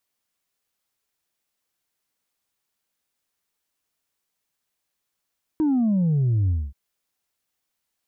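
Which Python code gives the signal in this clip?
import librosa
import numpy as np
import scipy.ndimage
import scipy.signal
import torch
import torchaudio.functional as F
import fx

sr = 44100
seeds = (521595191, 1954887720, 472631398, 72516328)

y = fx.sub_drop(sr, level_db=-18, start_hz=320.0, length_s=1.13, drive_db=1.5, fade_s=0.24, end_hz=65.0)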